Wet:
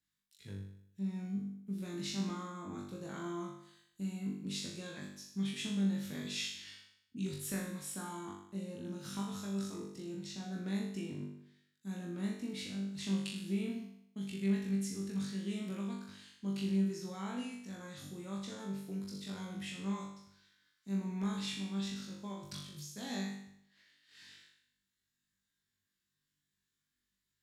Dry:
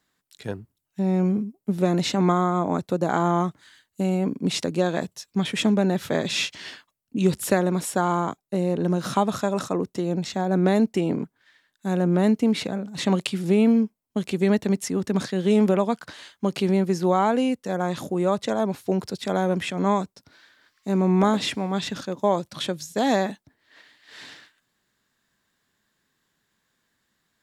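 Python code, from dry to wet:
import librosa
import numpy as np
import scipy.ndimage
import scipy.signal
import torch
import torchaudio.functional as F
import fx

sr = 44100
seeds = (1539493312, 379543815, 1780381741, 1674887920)

p1 = fx.tone_stack(x, sr, knobs='6-0-2')
p2 = fx.over_compress(p1, sr, threshold_db=-58.0, ratio=-1.0, at=(22.32, 22.79), fade=0.02)
p3 = p2 + fx.room_flutter(p2, sr, wall_m=3.5, rt60_s=0.7, dry=0)
y = F.gain(torch.from_numpy(p3), -1.0).numpy()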